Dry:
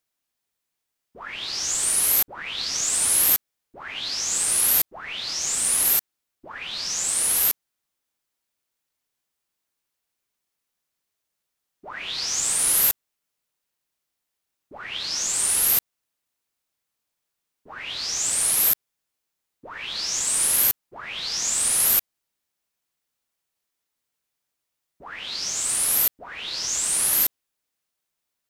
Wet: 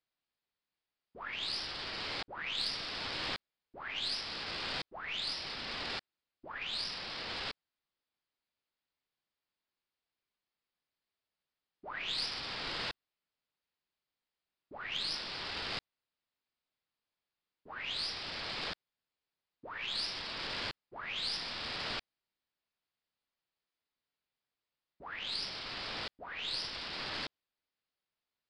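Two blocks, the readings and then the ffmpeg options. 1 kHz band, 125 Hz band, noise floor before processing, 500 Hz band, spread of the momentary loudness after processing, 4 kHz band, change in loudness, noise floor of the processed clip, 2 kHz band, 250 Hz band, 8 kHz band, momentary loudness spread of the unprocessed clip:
-6.0 dB, -6.0 dB, -82 dBFS, -6.0 dB, 10 LU, -7.0 dB, -17.0 dB, under -85 dBFS, -6.0 dB, -6.0 dB, -35.0 dB, 16 LU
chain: -af "aresample=11025,aresample=44100,aeval=exprs='0.178*(cos(1*acos(clip(val(0)/0.178,-1,1)))-cos(1*PI/2))+0.0126*(cos(4*acos(clip(val(0)/0.178,-1,1)))-cos(4*PI/2))':c=same,volume=0.501"

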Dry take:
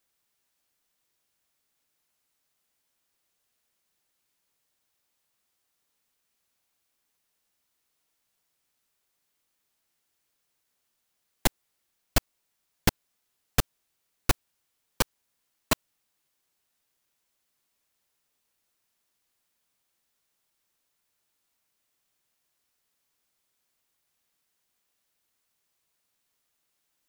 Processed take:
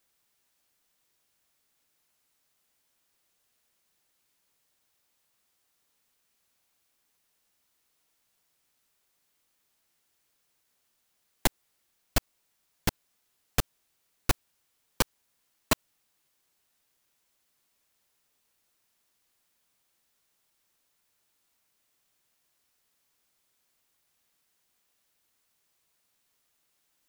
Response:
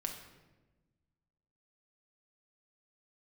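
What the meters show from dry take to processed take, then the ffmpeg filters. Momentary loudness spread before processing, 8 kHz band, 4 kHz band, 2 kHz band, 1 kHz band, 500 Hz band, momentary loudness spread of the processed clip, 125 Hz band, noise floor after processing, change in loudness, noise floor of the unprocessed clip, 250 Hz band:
2 LU, -1.5 dB, -1.5 dB, -1.5 dB, -1.5 dB, -1.5 dB, 3 LU, -2.5 dB, -75 dBFS, -1.5 dB, -78 dBFS, -2.0 dB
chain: -af "alimiter=limit=0.224:level=0:latency=1:release=65,volume=1.41"

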